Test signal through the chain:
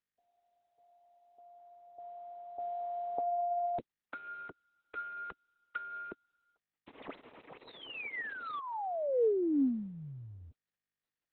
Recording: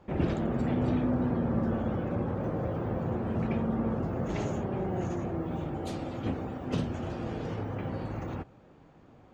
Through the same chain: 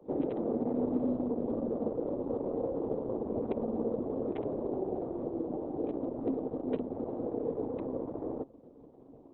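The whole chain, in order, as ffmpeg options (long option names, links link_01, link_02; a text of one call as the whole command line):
ffmpeg -i in.wav -filter_complex "[0:a]acrossover=split=1000[link_01][link_02];[link_02]acrusher=bits=5:mix=0:aa=0.000001[link_03];[link_01][link_03]amix=inputs=2:normalize=0,acrossover=split=270|1700[link_04][link_05][link_06];[link_04]acompressor=threshold=-44dB:ratio=4[link_07];[link_05]acompressor=threshold=-36dB:ratio=4[link_08];[link_06]acompressor=threshold=-46dB:ratio=4[link_09];[link_07][link_08][link_09]amix=inputs=3:normalize=0,highpass=140,equalizer=frequency=180:width_type=q:width=4:gain=-6,equalizer=frequency=270:width_type=q:width=4:gain=9,equalizer=frequency=460:width_type=q:width=4:gain=9,equalizer=frequency=1500:width_type=q:width=4:gain=-9,lowpass=frequency=3000:width=0.5412,lowpass=frequency=3000:width=1.3066,volume=1.5dB" -ar 48000 -c:a libopus -b:a 6k out.opus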